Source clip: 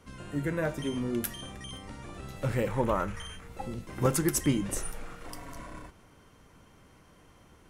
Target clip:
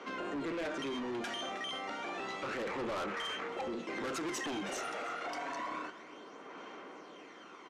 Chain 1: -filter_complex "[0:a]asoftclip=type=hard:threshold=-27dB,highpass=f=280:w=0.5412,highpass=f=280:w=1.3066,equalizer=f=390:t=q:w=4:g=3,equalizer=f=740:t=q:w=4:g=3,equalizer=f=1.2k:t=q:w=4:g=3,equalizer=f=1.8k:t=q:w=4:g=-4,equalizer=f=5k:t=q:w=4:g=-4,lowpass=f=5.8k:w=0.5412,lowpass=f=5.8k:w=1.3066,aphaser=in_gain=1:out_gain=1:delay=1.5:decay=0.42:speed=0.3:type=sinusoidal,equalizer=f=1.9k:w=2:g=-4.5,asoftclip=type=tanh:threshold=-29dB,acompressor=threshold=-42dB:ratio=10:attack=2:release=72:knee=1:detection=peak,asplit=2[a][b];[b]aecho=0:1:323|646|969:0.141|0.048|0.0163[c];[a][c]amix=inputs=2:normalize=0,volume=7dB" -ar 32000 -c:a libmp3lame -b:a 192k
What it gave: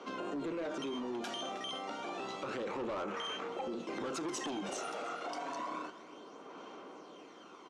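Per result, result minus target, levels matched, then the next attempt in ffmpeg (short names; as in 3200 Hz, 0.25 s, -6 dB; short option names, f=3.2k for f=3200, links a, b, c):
2000 Hz band -4.5 dB; soft clip: distortion -7 dB
-filter_complex "[0:a]asoftclip=type=hard:threshold=-27dB,highpass=f=280:w=0.5412,highpass=f=280:w=1.3066,equalizer=f=390:t=q:w=4:g=3,equalizer=f=740:t=q:w=4:g=3,equalizer=f=1.2k:t=q:w=4:g=3,equalizer=f=1.8k:t=q:w=4:g=-4,equalizer=f=5k:t=q:w=4:g=-4,lowpass=f=5.8k:w=0.5412,lowpass=f=5.8k:w=1.3066,aphaser=in_gain=1:out_gain=1:delay=1.5:decay=0.42:speed=0.3:type=sinusoidal,equalizer=f=1.9k:w=2:g=5,asoftclip=type=tanh:threshold=-29dB,acompressor=threshold=-42dB:ratio=10:attack=2:release=72:knee=1:detection=peak,asplit=2[a][b];[b]aecho=0:1:323|646|969:0.141|0.048|0.0163[c];[a][c]amix=inputs=2:normalize=0,volume=7dB" -ar 32000 -c:a libmp3lame -b:a 192k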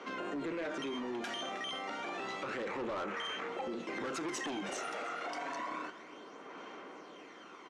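soft clip: distortion -6 dB
-filter_complex "[0:a]asoftclip=type=hard:threshold=-27dB,highpass=f=280:w=0.5412,highpass=f=280:w=1.3066,equalizer=f=390:t=q:w=4:g=3,equalizer=f=740:t=q:w=4:g=3,equalizer=f=1.2k:t=q:w=4:g=3,equalizer=f=1.8k:t=q:w=4:g=-4,equalizer=f=5k:t=q:w=4:g=-4,lowpass=f=5.8k:w=0.5412,lowpass=f=5.8k:w=1.3066,aphaser=in_gain=1:out_gain=1:delay=1.5:decay=0.42:speed=0.3:type=sinusoidal,equalizer=f=1.9k:w=2:g=5,asoftclip=type=tanh:threshold=-36dB,acompressor=threshold=-42dB:ratio=10:attack=2:release=72:knee=1:detection=peak,asplit=2[a][b];[b]aecho=0:1:323|646|969:0.141|0.048|0.0163[c];[a][c]amix=inputs=2:normalize=0,volume=7dB" -ar 32000 -c:a libmp3lame -b:a 192k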